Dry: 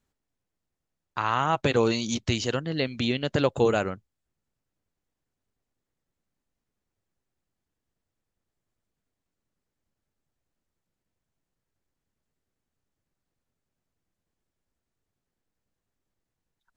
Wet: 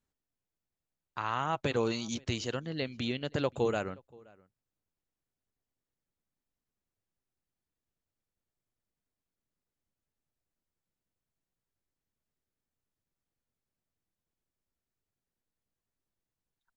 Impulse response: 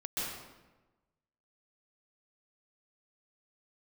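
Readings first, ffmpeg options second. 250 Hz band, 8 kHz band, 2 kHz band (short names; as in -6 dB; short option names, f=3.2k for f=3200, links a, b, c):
-7.5 dB, n/a, -7.5 dB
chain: -filter_complex "[0:a]asplit=2[a][b];[b]adelay=524.8,volume=-25dB,highshelf=f=4k:g=-11.8[c];[a][c]amix=inputs=2:normalize=0,volume=-7.5dB"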